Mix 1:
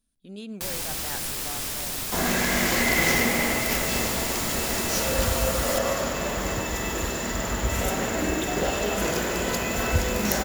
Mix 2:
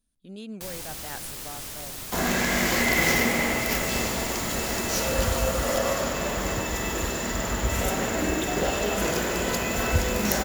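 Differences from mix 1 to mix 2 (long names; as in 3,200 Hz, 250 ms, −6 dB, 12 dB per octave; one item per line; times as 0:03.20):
first sound −5.0 dB
reverb: off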